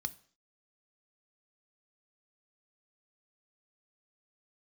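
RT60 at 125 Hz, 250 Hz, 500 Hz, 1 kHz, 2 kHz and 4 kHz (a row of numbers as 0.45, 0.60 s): 0.45, 0.50, 0.50, 0.50, 0.55, 0.55 s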